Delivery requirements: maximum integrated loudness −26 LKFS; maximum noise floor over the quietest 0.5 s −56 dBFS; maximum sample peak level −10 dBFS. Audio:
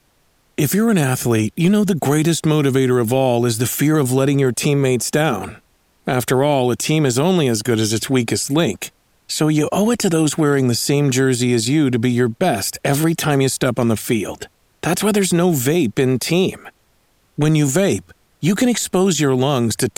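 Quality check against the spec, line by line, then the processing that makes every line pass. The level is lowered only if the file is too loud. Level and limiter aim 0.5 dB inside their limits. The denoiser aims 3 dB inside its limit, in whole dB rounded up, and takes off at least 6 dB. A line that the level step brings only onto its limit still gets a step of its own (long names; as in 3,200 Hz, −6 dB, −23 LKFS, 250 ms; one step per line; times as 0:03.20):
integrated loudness −17.0 LKFS: out of spec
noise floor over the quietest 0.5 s −59 dBFS: in spec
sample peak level −4.0 dBFS: out of spec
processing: level −9.5 dB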